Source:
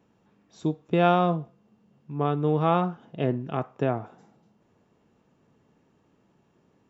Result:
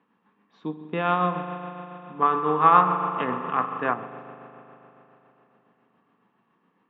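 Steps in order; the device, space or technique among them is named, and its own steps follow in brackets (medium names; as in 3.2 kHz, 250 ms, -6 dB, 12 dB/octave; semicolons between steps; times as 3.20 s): high-pass 150 Hz 12 dB/octave; combo amplifier with spring reverb and tremolo (spring tank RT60 3.5 s, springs 39 ms, chirp 40 ms, DRR 6 dB; tremolo 7.2 Hz, depth 37%; cabinet simulation 78–3400 Hz, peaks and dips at 100 Hz -9 dB, 140 Hz -10 dB, 360 Hz -7 dB, 620 Hz -9 dB, 1.1 kHz +9 dB, 1.8 kHz +5 dB); 2.22–3.94 s: peaking EQ 1.4 kHz +8.5 dB 2.1 oct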